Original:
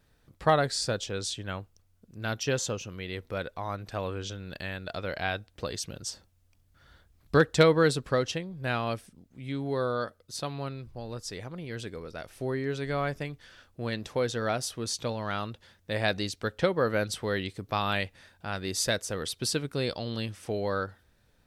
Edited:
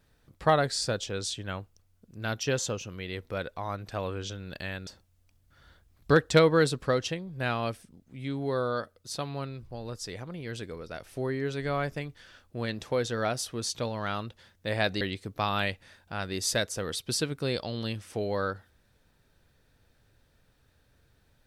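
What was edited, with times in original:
4.87–6.11 s: delete
16.25–17.34 s: delete

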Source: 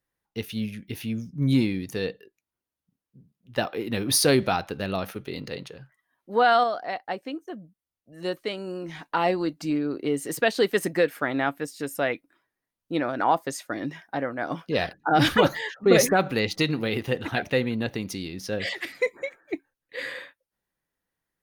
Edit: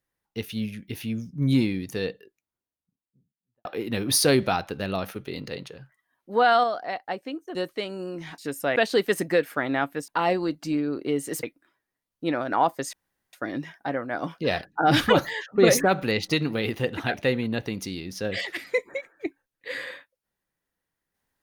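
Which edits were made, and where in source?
2.09–3.65 s: studio fade out
7.55–8.23 s: delete
9.06–10.41 s: swap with 11.73–12.11 s
13.61 s: insert room tone 0.40 s

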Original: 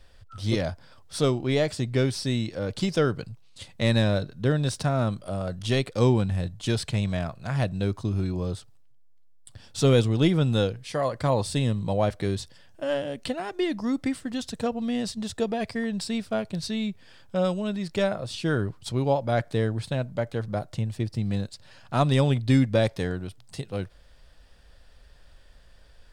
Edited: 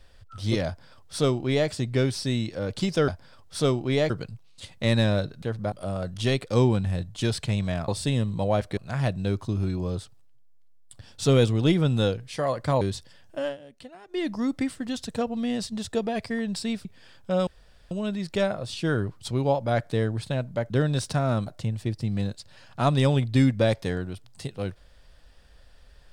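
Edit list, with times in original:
0.67–1.69 s: copy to 3.08 s
4.40–5.17 s: swap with 20.31–20.61 s
11.37–12.26 s: move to 7.33 s
12.86–13.69 s: dip -14.5 dB, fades 0.16 s
16.30–16.90 s: delete
17.52 s: insert room tone 0.44 s

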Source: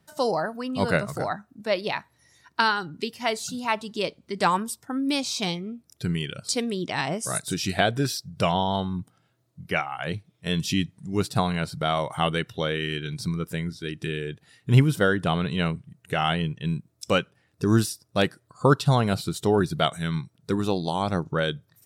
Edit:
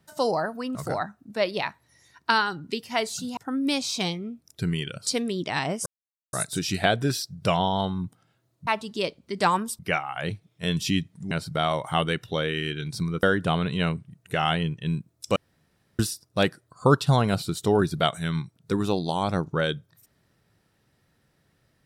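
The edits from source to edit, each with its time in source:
0.75–1.05 s: delete
3.67–4.79 s: move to 9.62 s
7.28 s: insert silence 0.47 s
11.14–11.57 s: delete
13.49–15.02 s: delete
17.15–17.78 s: room tone

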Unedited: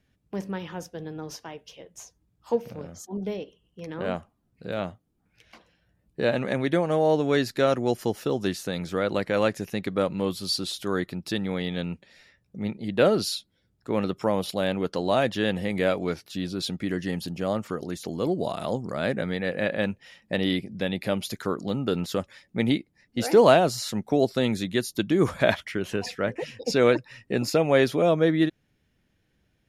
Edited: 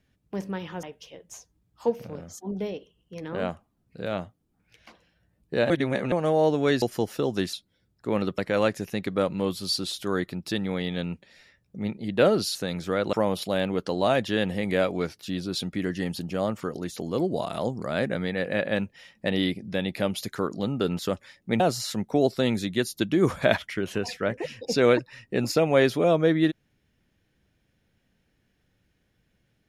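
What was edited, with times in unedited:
0.83–1.49 s: delete
6.36–6.78 s: reverse
7.48–7.89 s: delete
8.60–9.18 s: swap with 13.35–14.20 s
22.67–23.58 s: delete

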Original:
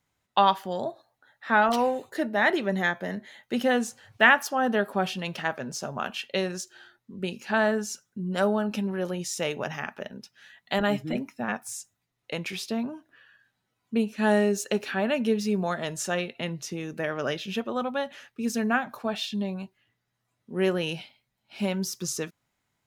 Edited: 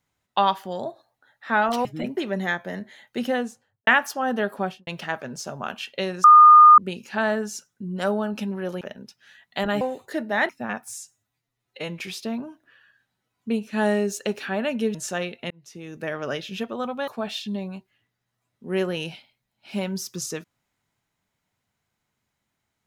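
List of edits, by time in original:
1.85–2.53 s: swap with 10.96–11.28 s
3.57–4.23 s: studio fade out
4.96–5.23 s: studio fade out
6.60–7.14 s: bleep 1.22 kHz -6.5 dBFS
9.17–9.96 s: delete
11.78–12.45 s: stretch 1.5×
15.40–15.91 s: delete
16.47–17.03 s: fade in
18.04–18.94 s: delete

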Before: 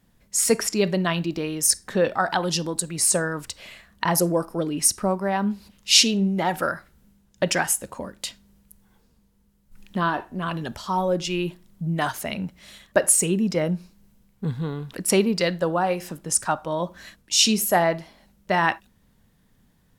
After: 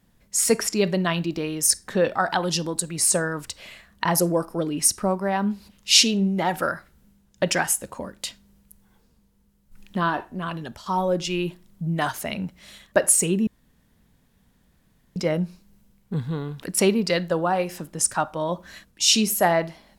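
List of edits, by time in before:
10.21–10.86 s: fade out, to -6.5 dB
13.47 s: insert room tone 1.69 s

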